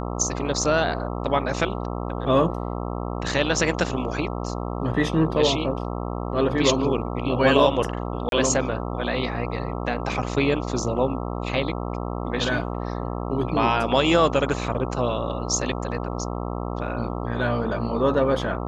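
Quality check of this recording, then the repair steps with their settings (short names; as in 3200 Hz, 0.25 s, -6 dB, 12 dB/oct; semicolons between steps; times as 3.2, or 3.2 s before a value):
buzz 60 Hz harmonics 22 -29 dBFS
8.29–8.32 gap 32 ms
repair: de-hum 60 Hz, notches 22; interpolate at 8.29, 32 ms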